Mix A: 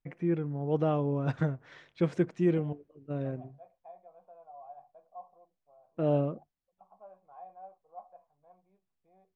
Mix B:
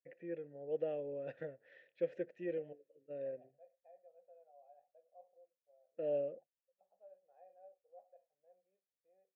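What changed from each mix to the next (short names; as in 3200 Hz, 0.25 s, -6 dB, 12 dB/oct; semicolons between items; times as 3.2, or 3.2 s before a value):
master: add vowel filter e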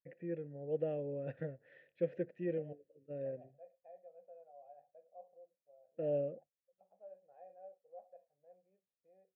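second voice +5.0 dB; master: add tone controls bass +13 dB, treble -10 dB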